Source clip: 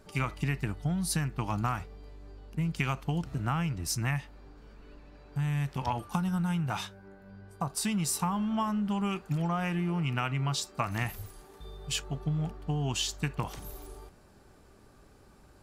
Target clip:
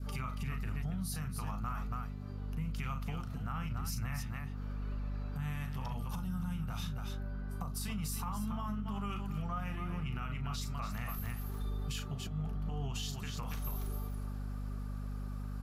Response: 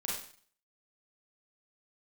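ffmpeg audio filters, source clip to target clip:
-filter_complex "[0:a]asettb=1/sr,asplit=3[a][b][c];[a]atrim=end=5.884[d];[b]atrim=start=5.88:end=7.88,asetpts=PTS-STARTPTS,afade=t=in:d=0.004:c=qsin,afade=t=out:st=1.996:d=0.004:c=qsin,acrossover=split=460|3000[e][f][g];[f]acompressor=threshold=-41dB:ratio=6[h];[e][h][g]amix=inputs=3:normalize=0[i];[c]atrim=start=7.876[j];[d][i]acrossfade=d=0.004:c1=hsin:c2=qsin[k];[k][j]acrossfade=d=0.004:c1=qsin:c2=hsin,aecho=1:1:37.9|279.9:0.355|0.316,alimiter=level_in=2.5dB:limit=-24dB:level=0:latency=1:release=78,volume=-2.5dB,equalizer=f=315:t=o:w=0.33:g=-12,equalizer=f=1.25k:t=o:w=0.33:g=9,equalizer=f=8k:t=o:w=0.33:g=-5,equalizer=f=12.5k:t=o:w=0.33:g=8,acompressor=threshold=-45dB:ratio=2,flanger=delay=1.3:depth=3.3:regen=-73:speed=1:shape=triangular,aeval=exprs='val(0)+0.00631*(sin(2*PI*50*n/s)+sin(2*PI*2*50*n/s)/2+sin(2*PI*3*50*n/s)/3+sin(2*PI*4*50*n/s)/4+sin(2*PI*5*50*n/s)/5)':c=same,adynamicequalizer=threshold=0.00141:dfrequency=960:dqfactor=0.83:tfrequency=960:tqfactor=0.83:attack=5:release=100:ratio=0.375:range=1.5:mode=cutabove:tftype=bell,volume=6dB"

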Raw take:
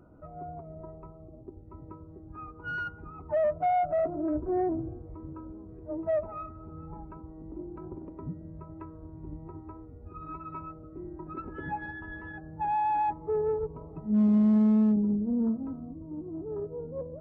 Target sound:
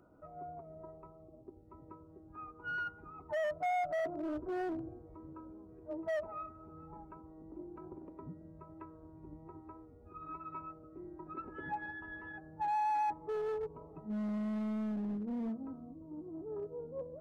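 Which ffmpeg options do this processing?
-filter_complex "[0:a]lowshelf=f=220:g=-11,acrossover=split=990[a][b];[a]asoftclip=type=hard:threshold=-31dB[c];[c][b]amix=inputs=2:normalize=0,volume=-3.5dB"

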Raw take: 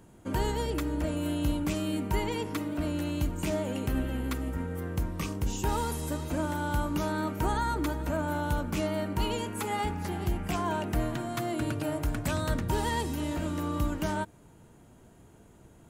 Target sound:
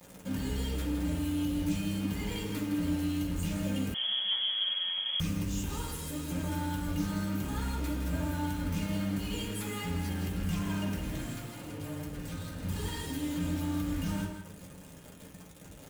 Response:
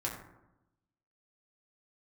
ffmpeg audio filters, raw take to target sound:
-filter_complex "[0:a]equalizer=f=750:t=o:w=2.7:g=-14,acrossover=split=110[a][b];[b]acontrast=57[c];[a][c]amix=inputs=2:normalize=0,alimiter=level_in=1dB:limit=-24dB:level=0:latency=1:release=23,volume=-1dB,asplit=2[d][e];[e]acompressor=threshold=-43dB:ratio=10,volume=1.5dB[f];[d][f]amix=inputs=2:normalize=0,asoftclip=type=tanh:threshold=-28.5dB,acrusher=bits=6:mix=0:aa=0.000001,asettb=1/sr,asplit=3[g][h][i];[g]atrim=end=11.364[j];[h]atrim=start=11.36:end=12.63,asetpts=PTS-STARTPTS,afade=t=in:d=0.004:c=qsin,afade=t=out:st=1.266:d=0.004:c=qsin,asoftclip=type=hard:threshold=-38.5dB[k];[i]atrim=start=12.626[l];[j][k]acrossfade=d=0.004:c1=hsin:c2=qsin[m];[m][l]acrossfade=d=0.004:c1=qsin:c2=hsin,aecho=1:1:163:0.398[n];[1:a]atrim=start_sample=2205,asetrate=70560,aresample=44100[o];[n][o]afir=irnorm=-1:irlink=0,asettb=1/sr,asplit=3[p][q][r];[p]atrim=end=3.944[s];[q]atrim=start=3.94:end=5.2,asetpts=PTS-STARTPTS,afade=t=in:d=0.004:c=qsin,afade=t=out:st=1.256:d=0.004:c=qsin,lowpass=f=2.9k:t=q:w=0.5098,lowpass=f=2.9k:t=q:w=0.6013,lowpass=f=2.9k:t=q:w=0.9,lowpass=f=2.9k:t=q:w=2.563,afreqshift=-3400[t];[r]atrim=start=5.196[u];[s][t]acrossfade=d=0.004:c1=hsin:c2=qsin[v];[v][u]acrossfade=d=0.004:c1=qsin:c2=hsin,volume=-1.5dB"

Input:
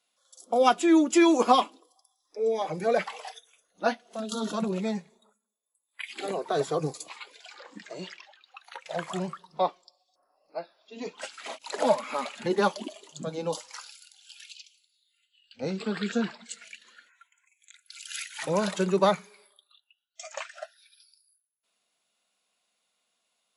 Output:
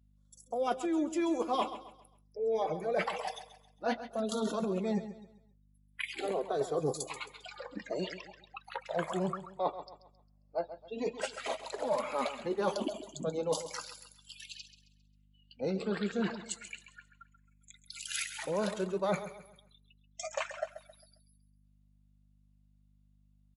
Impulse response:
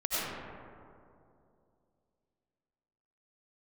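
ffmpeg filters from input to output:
-filter_complex "[0:a]aemphasis=mode=production:type=50fm,afftdn=nr=22:nf=-46,lowpass=f=2.6k:p=1,equalizer=f=480:t=o:w=1.4:g=5.5,areverse,acompressor=threshold=-31dB:ratio=10,areverse,aeval=exprs='val(0)+0.000501*(sin(2*PI*50*n/s)+sin(2*PI*2*50*n/s)/2+sin(2*PI*3*50*n/s)/3+sin(2*PI*4*50*n/s)/4+sin(2*PI*5*50*n/s)/5)':c=same,asplit=2[a][b];[b]aecho=0:1:134|268|402|536:0.237|0.0854|0.0307|0.0111[c];[a][c]amix=inputs=2:normalize=0,volume=2dB"

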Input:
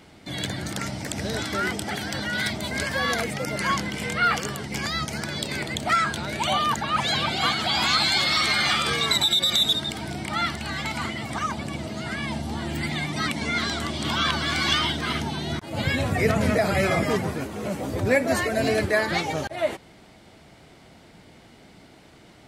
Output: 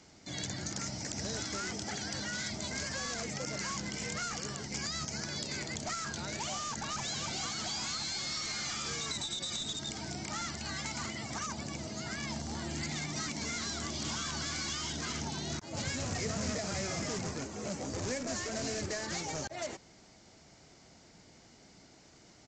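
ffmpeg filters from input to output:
-filter_complex "[0:a]asplit=2[a][b];[b]aeval=exprs='(mod(11.2*val(0)+1,2)-1)/11.2':c=same,volume=-4dB[c];[a][c]amix=inputs=2:normalize=0,aeval=exprs='0.447*(cos(1*acos(clip(val(0)/0.447,-1,1)))-cos(1*PI/2))+0.0891*(cos(3*acos(clip(val(0)/0.447,-1,1)))-cos(3*PI/2))':c=same,aexciter=amount=3.6:drive=7.8:freq=4.9k,aresample=16000,asoftclip=type=tanh:threshold=-19dB,aresample=44100,acrossover=split=330[d][e];[e]acompressor=threshold=-29dB:ratio=6[f];[d][f]amix=inputs=2:normalize=0,volume=-5.5dB"

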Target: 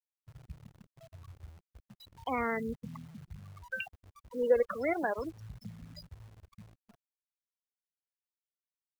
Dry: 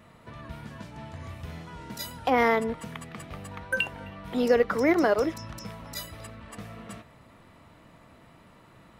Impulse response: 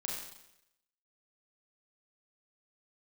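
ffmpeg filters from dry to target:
-af "aphaser=in_gain=1:out_gain=1:delay=2.1:decay=0.55:speed=0.34:type=triangular,afftfilt=real='re*gte(hypot(re,im),0.0794)':imag='im*gte(hypot(re,im),0.0794)':win_size=1024:overlap=0.75,acrusher=bits=9:dc=4:mix=0:aa=0.000001,volume=-9dB"

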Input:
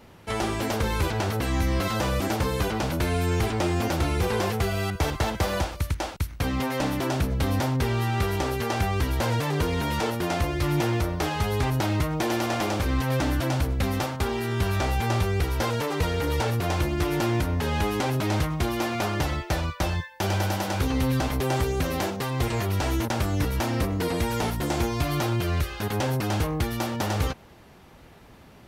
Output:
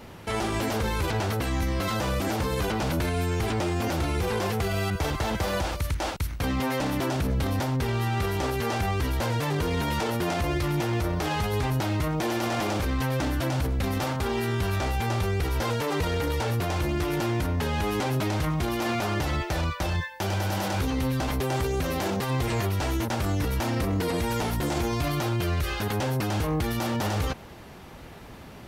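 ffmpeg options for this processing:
-af "alimiter=level_in=1.5dB:limit=-24dB:level=0:latency=1:release=28,volume=-1.5dB,volume=6dB"

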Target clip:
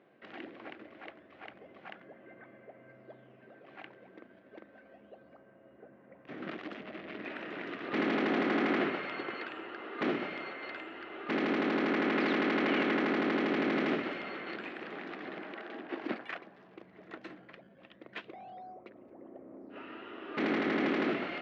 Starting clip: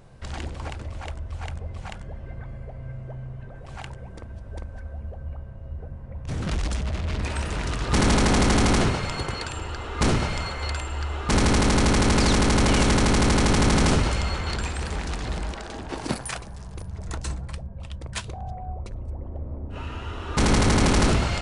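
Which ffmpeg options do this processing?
-filter_complex "[0:a]asplit=2[a][b];[b]acrusher=samples=16:mix=1:aa=0.000001:lfo=1:lforange=25.6:lforate=0.3,volume=-8dB[c];[a][c]amix=inputs=2:normalize=0,highpass=f=250:w=0.5412,highpass=f=250:w=1.3066,equalizer=f=330:t=q:w=4:g=4,equalizer=f=490:t=q:w=4:g=-3,equalizer=f=920:t=q:w=4:g=-8,equalizer=f=1.9k:t=q:w=4:g=4,lowpass=f=3k:w=0.5412,lowpass=f=3k:w=1.3066,volume=-8.5dB"

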